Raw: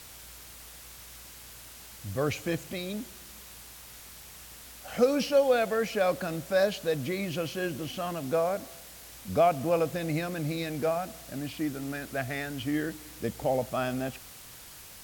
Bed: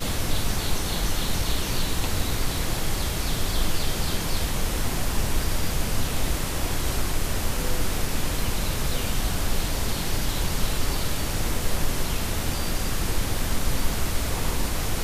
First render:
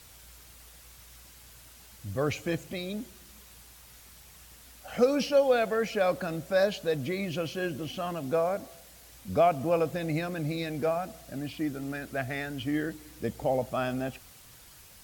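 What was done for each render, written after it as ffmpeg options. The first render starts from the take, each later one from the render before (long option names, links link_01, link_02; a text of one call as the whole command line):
ffmpeg -i in.wav -af "afftdn=noise_reduction=6:noise_floor=-48" out.wav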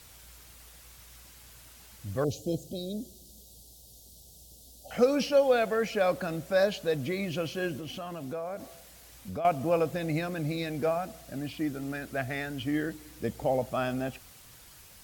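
ffmpeg -i in.wav -filter_complex "[0:a]asettb=1/sr,asplit=3[link_01][link_02][link_03];[link_01]atrim=end=2.244[link_04];[link_02]atrim=start=2.24:end=4.91,asetpts=PTS-STARTPTS,afade=type=in:duration=0.004:curve=qsin,afade=type=out:start_time=2.666:duration=0.004:curve=qsin,asuperstop=centerf=1600:order=8:qfactor=0.56[link_05];[link_03]atrim=start=4.906[link_06];[link_04][link_05]acrossfade=duration=0.004:curve1=hsin:curve2=qsin[link_07];[link_07][link_06]acrossfade=duration=0.004:curve1=qsin:curve2=hsin,asettb=1/sr,asplit=3[link_08][link_09][link_10];[link_08]atrim=end=7.774[link_11];[link_09]atrim=start=7.77:end=9.45,asetpts=PTS-STARTPTS,afade=type=in:duration=0.004:curve=qsin,afade=type=out:start_time=1.676:duration=0.004:curve=qsin,acompressor=threshold=-35dB:ratio=3:attack=3.2:release=140:knee=1:detection=peak[link_12];[link_10]atrim=start=9.446[link_13];[link_11][link_12]acrossfade=duration=0.004:curve1=hsin:curve2=qsin[link_14];[link_14][link_13]acrossfade=duration=0.004:curve1=qsin:curve2=hsin" out.wav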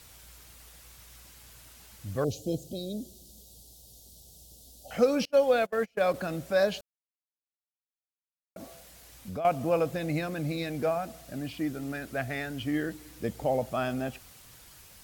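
ffmpeg -i in.wav -filter_complex "[0:a]asettb=1/sr,asplit=3[link_01][link_02][link_03];[link_01]atrim=end=5.254[link_04];[link_02]atrim=start=5.25:end=6.14,asetpts=PTS-STARTPTS,afade=type=in:duration=0.004:curve=qsin,afade=type=out:start_time=0.886:duration=0.004:curve=qsin,agate=range=-31dB:threshold=-29dB:ratio=16:release=100:detection=peak[link_05];[link_03]atrim=start=6.136[link_06];[link_04][link_05]acrossfade=duration=0.004:curve1=hsin:curve2=qsin[link_07];[link_07][link_06]acrossfade=duration=0.004:curve1=qsin:curve2=hsin,asplit=3[link_08][link_09][link_10];[link_08]atrim=end=6.81,asetpts=PTS-STARTPTS,afade=type=out:start_time=6.806:duration=0.004:curve=hsin[link_11];[link_09]atrim=start=6.81:end=8.56,asetpts=PTS-STARTPTS,volume=0[link_12];[link_10]atrim=start=8.56,asetpts=PTS-STARTPTS,afade=type=in:duration=0.004:curve=hsin[link_13];[link_11][link_12][link_13]concat=n=3:v=0:a=1" out.wav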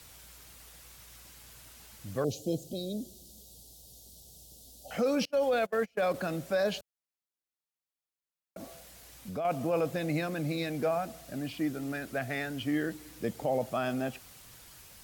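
ffmpeg -i in.wav -filter_complex "[0:a]acrossover=split=110[link_01][link_02];[link_01]acompressor=threshold=-59dB:ratio=6[link_03];[link_02]alimiter=limit=-21dB:level=0:latency=1:release=12[link_04];[link_03][link_04]amix=inputs=2:normalize=0" out.wav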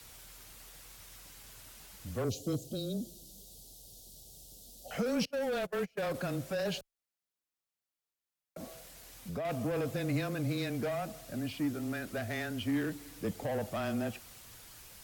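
ffmpeg -i in.wav -filter_complex "[0:a]afreqshift=-16,acrossover=split=270|4600[link_01][link_02][link_03];[link_02]asoftclip=type=tanh:threshold=-32.5dB[link_04];[link_01][link_04][link_03]amix=inputs=3:normalize=0" out.wav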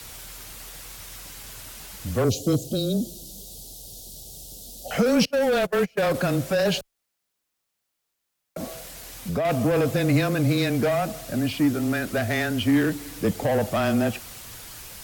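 ffmpeg -i in.wav -af "volume=12dB" out.wav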